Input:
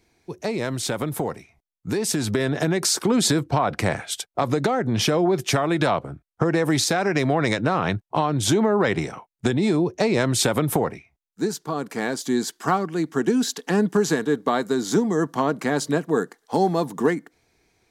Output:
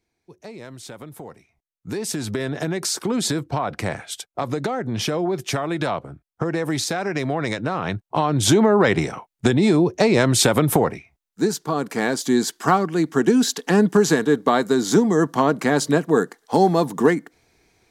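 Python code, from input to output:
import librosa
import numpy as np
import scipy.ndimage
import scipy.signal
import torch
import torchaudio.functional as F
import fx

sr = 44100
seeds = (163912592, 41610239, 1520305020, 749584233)

y = fx.gain(x, sr, db=fx.line((1.21, -12.0), (1.97, -3.0), (7.8, -3.0), (8.46, 4.0)))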